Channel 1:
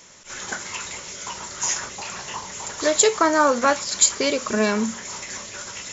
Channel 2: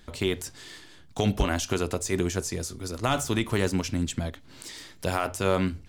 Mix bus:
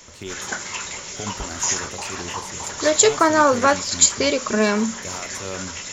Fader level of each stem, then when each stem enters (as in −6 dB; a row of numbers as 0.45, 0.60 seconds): +2.0, −8.0 decibels; 0.00, 0.00 seconds